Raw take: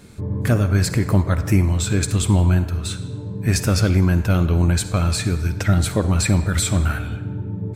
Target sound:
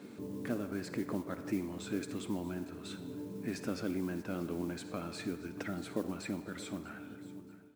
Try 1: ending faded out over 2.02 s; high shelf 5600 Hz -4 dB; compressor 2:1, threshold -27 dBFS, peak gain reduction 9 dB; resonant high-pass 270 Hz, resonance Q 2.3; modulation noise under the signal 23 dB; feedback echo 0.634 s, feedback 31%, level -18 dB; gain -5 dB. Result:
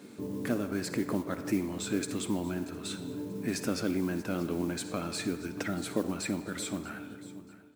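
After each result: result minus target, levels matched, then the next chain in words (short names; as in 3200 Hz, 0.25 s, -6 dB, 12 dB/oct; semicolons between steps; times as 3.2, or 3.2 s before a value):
8000 Hz band +5.5 dB; compressor: peak gain reduction -5 dB
ending faded out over 2.02 s; high shelf 5600 Hz -14.5 dB; compressor 2:1, threshold -27 dBFS, peak gain reduction 9 dB; resonant high-pass 270 Hz, resonance Q 2.3; modulation noise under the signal 23 dB; feedback echo 0.634 s, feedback 31%, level -18 dB; gain -5 dB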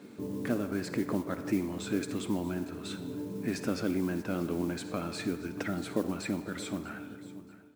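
compressor: peak gain reduction -5 dB
ending faded out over 2.02 s; high shelf 5600 Hz -14.5 dB; compressor 2:1, threshold -37.5 dBFS, peak gain reduction 14 dB; resonant high-pass 270 Hz, resonance Q 2.3; modulation noise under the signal 23 dB; feedback echo 0.634 s, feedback 31%, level -18 dB; gain -5 dB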